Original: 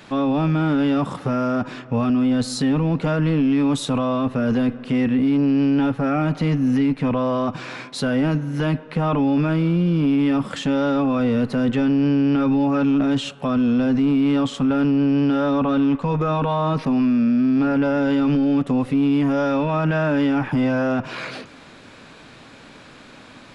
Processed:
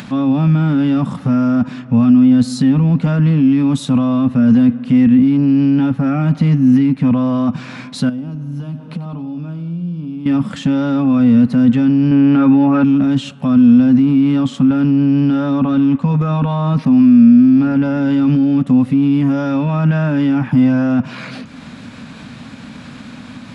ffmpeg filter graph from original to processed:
ffmpeg -i in.wav -filter_complex "[0:a]asettb=1/sr,asplit=3[link_01][link_02][link_03];[link_01]atrim=end=8.094[link_04];[link_02]atrim=start=8.09:end=10.26,asetpts=PTS-STARTPTS,afade=type=in:duration=0.004:curve=qsin,afade=type=out:start_time=2.166:duration=0.004:curve=qsin,equalizer=frequency=1900:width=2.2:gain=-11,acompressor=threshold=-29dB:ratio=10:attack=3.2:release=140:knee=1:detection=peak,aecho=1:1:91|182|273|364|455|546:0.2|0.11|0.0604|0.0332|0.0183|0.01,atrim=end_sample=95697[link_05];[link_03]atrim=start=10.256[link_06];[link_04][link_05]acrossfade=duration=0.004:curve1=hsin:curve2=qsin[link_07];[link_07][link_06]acrossfade=duration=0.004:curve1=qsin:curve2=hsin,asettb=1/sr,asplit=3[link_08][link_09][link_10];[link_08]atrim=end=12.114[link_11];[link_09]atrim=start=12.11:end=12.84,asetpts=PTS-STARTPTS,afade=type=in:duration=0.004:curve=qsin,afade=type=out:start_time=0.726:duration=0.004:curve=qsin,lowpass=2100,aemphasis=mode=production:type=bsi,acontrast=75[link_12];[link_10]atrim=start=12.836[link_13];[link_11][link_12]acrossfade=duration=0.004:curve1=hsin:curve2=qsin[link_14];[link_14][link_13]acrossfade=duration=0.004:curve1=qsin:curve2=hsin,highpass=42,lowshelf=frequency=290:width_type=q:width=3:gain=6.5,acompressor=mode=upward:threshold=-25dB:ratio=2.5" out.wav

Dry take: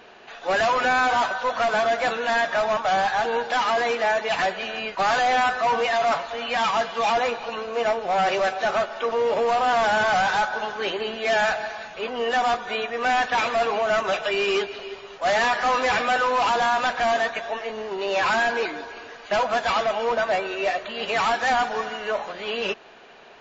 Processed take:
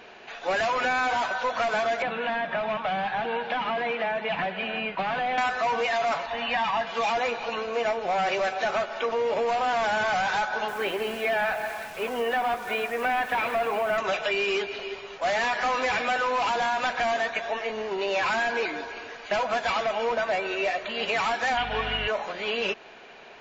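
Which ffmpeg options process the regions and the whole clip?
ffmpeg -i in.wav -filter_complex "[0:a]asettb=1/sr,asplit=3[link_01][link_02][link_03];[link_01]atrim=end=2.024[link_04];[link_02]atrim=start=2.02:end=5.38,asetpts=PTS-STARTPTS,afade=type=in:duration=0.004:curve=qsin,afade=type=out:start_time=3.356:duration=0.004:curve=qsin,equalizer=frequency=180:width_type=o:width=0.76:gain=11,acrossover=split=540|1400[link_05][link_06][link_07];[link_05]acompressor=threshold=-35dB:ratio=4[link_08];[link_06]acompressor=threshold=-29dB:ratio=4[link_09];[link_07]acompressor=threshold=-42dB:ratio=4[link_10];[link_08][link_09][link_10]amix=inputs=3:normalize=0,lowpass=frequency=3000:width_type=q:width=2.1[link_11];[link_03]atrim=start=5.376[link_12];[link_04][link_11]acrossfade=duration=0.004:curve1=hsin:curve2=qsin[link_13];[link_13][link_12]acrossfade=duration=0.004:curve1=qsin:curve2=hsin,asettb=1/sr,asplit=3[link_14][link_15][link_16];[link_14]atrim=end=6.264[link_17];[link_15]atrim=start=6.26:end=6.87,asetpts=PTS-STARTPTS,afade=type=in:duration=0.004:curve=qsin,afade=type=out:start_time=0.606:duration=0.004:curve=qsin,lowpass=3700,aecho=1:1:1.1:0.46,atrim=end_sample=26901[link_18];[link_16]atrim=start=6.866[link_19];[link_17][link_18]acrossfade=duration=0.004:curve1=hsin:curve2=qsin[link_20];[link_20][link_19]acrossfade=duration=0.004:curve1=qsin:curve2=hsin,asettb=1/sr,asplit=3[link_21][link_22][link_23];[link_21]atrim=end=10.684[link_24];[link_22]atrim=start=10.68:end=13.98,asetpts=PTS-STARTPTS,afade=type=in:duration=0.004:curve=qsin,afade=type=out:start_time=3.296:duration=0.004:curve=qsin,lowpass=2700,acrusher=bits=8:dc=4:mix=0:aa=0.000001[link_25];[link_23]atrim=start=13.976[link_26];[link_24][link_25]acrossfade=duration=0.004:curve1=hsin:curve2=qsin[link_27];[link_27][link_26]acrossfade=duration=0.004:curve1=qsin:curve2=hsin,asettb=1/sr,asplit=3[link_28][link_29][link_30];[link_28]atrim=end=21.574[link_31];[link_29]atrim=start=21.57:end=22.08,asetpts=PTS-STARTPTS,afade=type=in:duration=0.004:curve=qsin,afade=type=out:start_time=0.506:duration=0.004:curve=qsin,lowpass=frequency=3100:width_type=q:width=3.3,aeval=exprs='val(0)+0.02*(sin(2*PI*50*n/s)+sin(2*PI*2*50*n/s)/2+sin(2*PI*3*50*n/s)/3+sin(2*PI*4*50*n/s)/4+sin(2*PI*5*50*n/s)/5)':channel_layout=same[link_32];[link_30]atrim=start=22.076[link_33];[link_31][link_32]acrossfade=duration=0.004:curve1=hsin:curve2=qsin[link_34];[link_34][link_33]acrossfade=duration=0.004:curve1=qsin:curve2=hsin,equalizer=frequency=2300:width_type=o:width=0.32:gain=4.5,bandreject=frequency=1200:width=27,acompressor=threshold=-23dB:ratio=6" out.wav

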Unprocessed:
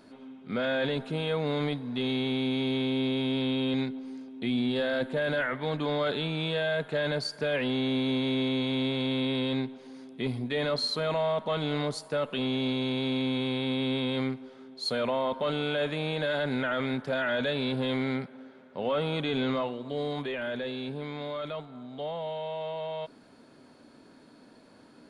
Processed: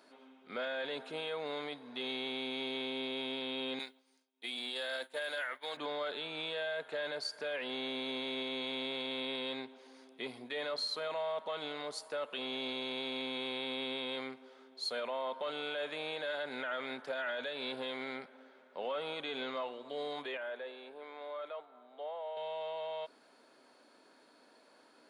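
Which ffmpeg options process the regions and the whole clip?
ffmpeg -i in.wav -filter_complex "[0:a]asettb=1/sr,asplit=3[link_01][link_02][link_03];[link_01]atrim=end=3.794[link_04];[link_02]atrim=start=3.79:end=5.77,asetpts=PTS-STARTPTS,afade=type=in:duration=0.004:curve=qsin,afade=type=out:start_time=1.976:duration=0.004:curve=qsin,agate=range=-33dB:threshold=-30dB:ratio=3:release=100:detection=peak,aemphasis=mode=production:type=riaa[link_05];[link_03]atrim=start=5.766[link_06];[link_04][link_05]acrossfade=duration=0.004:curve1=hsin:curve2=qsin[link_07];[link_07][link_06]acrossfade=duration=0.004:curve1=qsin:curve2=hsin,asettb=1/sr,asplit=3[link_08][link_09][link_10];[link_08]atrim=end=20.374[link_11];[link_09]atrim=start=20.37:end=22.37,asetpts=PTS-STARTPTS,afade=type=in:duration=0.004:curve=qsin,afade=type=out:start_time=1.996:duration=0.004:curve=qsin,highpass=410,equalizer=frequency=5300:width_type=o:width=2.3:gain=-12[link_12];[link_10]atrim=start=22.366[link_13];[link_11][link_12]acrossfade=duration=0.004:curve1=hsin:curve2=qsin[link_14];[link_14][link_13]acrossfade=duration=0.004:curve1=qsin:curve2=hsin,highpass=490,alimiter=level_in=1.5dB:limit=-24dB:level=0:latency=1:release=187,volume=-1.5dB,volume=-3.5dB" out.wav

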